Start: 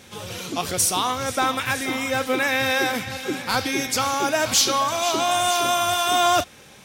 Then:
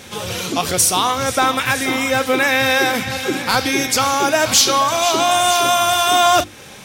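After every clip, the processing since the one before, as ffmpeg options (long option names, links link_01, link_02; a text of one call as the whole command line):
ffmpeg -i in.wav -filter_complex "[0:a]bandreject=frequency=50:width_type=h:width=6,bandreject=frequency=100:width_type=h:width=6,bandreject=frequency=150:width_type=h:width=6,bandreject=frequency=200:width_type=h:width=6,bandreject=frequency=250:width_type=h:width=6,bandreject=frequency=300:width_type=h:width=6,bandreject=frequency=350:width_type=h:width=6,asplit=2[link_01][link_02];[link_02]acompressor=threshold=-30dB:ratio=6,volume=-1.5dB[link_03];[link_01][link_03]amix=inputs=2:normalize=0,volume=4dB" out.wav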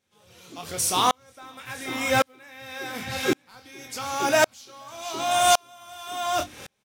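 ffmpeg -i in.wav -filter_complex "[0:a]acrusher=bits=7:mode=log:mix=0:aa=0.000001,asplit=2[link_01][link_02];[link_02]adelay=24,volume=-8dB[link_03];[link_01][link_03]amix=inputs=2:normalize=0,aeval=exprs='val(0)*pow(10,-39*if(lt(mod(-0.9*n/s,1),2*abs(-0.9)/1000),1-mod(-0.9*n/s,1)/(2*abs(-0.9)/1000),(mod(-0.9*n/s,1)-2*abs(-0.9)/1000)/(1-2*abs(-0.9)/1000))/20)':channel_layout=same,volume=-1.5dB" out.wav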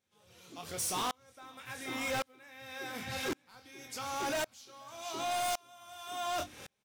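ffmpeg -i in.wav -af "asoftclip=type=hard:threshold=-23.5dB,volume=-7.5dB" out.wav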